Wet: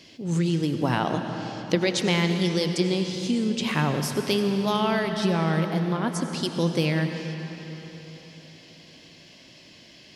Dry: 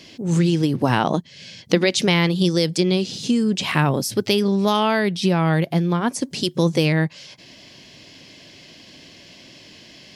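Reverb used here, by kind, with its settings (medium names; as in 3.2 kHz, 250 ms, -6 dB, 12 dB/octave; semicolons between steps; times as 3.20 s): algorithmic reverb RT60 4 s, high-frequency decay 0.8×, pre-delay 55 ms, DRR 5.5 dB; trim -6 dB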